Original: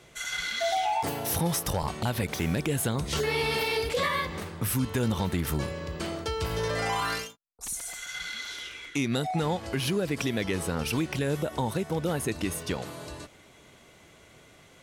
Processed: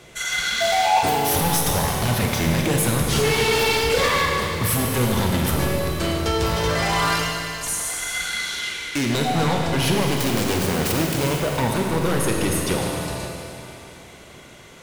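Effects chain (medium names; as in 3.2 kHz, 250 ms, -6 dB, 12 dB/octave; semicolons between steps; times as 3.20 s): 9.97–11.43 s: self-modulated delay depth 0.71 ms; wavefolder -24 dBFS; Schroeder reverb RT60 3 s, combs from 33 ms, DRR 0.5 dB; trim +7.5 dB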